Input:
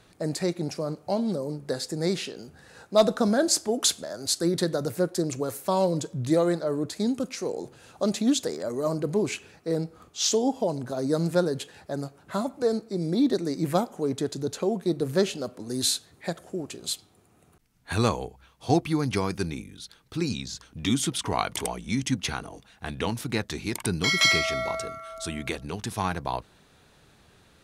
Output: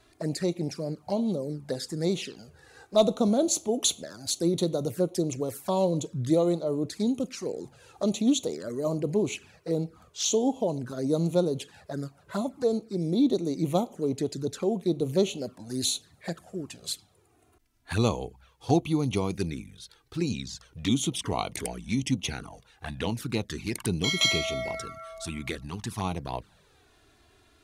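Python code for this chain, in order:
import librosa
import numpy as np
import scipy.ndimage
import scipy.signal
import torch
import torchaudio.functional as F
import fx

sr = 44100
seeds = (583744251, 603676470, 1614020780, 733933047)

y = fx.env_flanger(x, sr, rest_ms=3.1, full_db=-24.0)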